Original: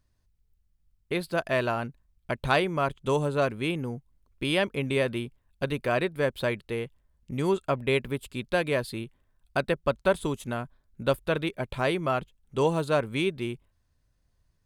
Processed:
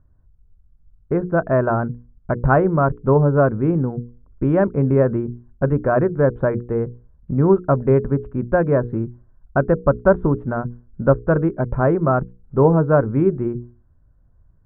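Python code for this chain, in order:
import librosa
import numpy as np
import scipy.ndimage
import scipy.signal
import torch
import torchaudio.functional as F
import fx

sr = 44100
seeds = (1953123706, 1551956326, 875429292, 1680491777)

y = scipy.signal.sosfilt(scipy.signal.ellip(4, 1.0, 80, 1500.0, 'lowpass', fs=sr, output='sos'), x)
y = fx.low_shelf(y, sr, hz=300.0, db=10.5)
y = fx.hum_notches(y, sr, base_hz=60, count=8)
y = F.gain(torch.from_numpy(y), 7.0).numpy()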